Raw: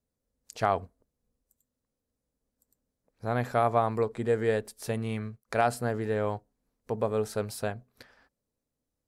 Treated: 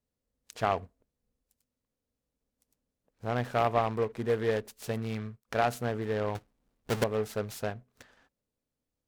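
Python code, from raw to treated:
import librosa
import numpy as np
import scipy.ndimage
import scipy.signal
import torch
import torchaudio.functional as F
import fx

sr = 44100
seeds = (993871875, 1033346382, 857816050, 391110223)

y = fx.halfwave_hold(x, sr, at=(6.35, 7.04))
y = fx.noise_mod_delay(y, sr, seeds[0], noise_hz=1300.0, depth_ms=0.038)
y = y * librosa.db_to_amplitude(-2.0)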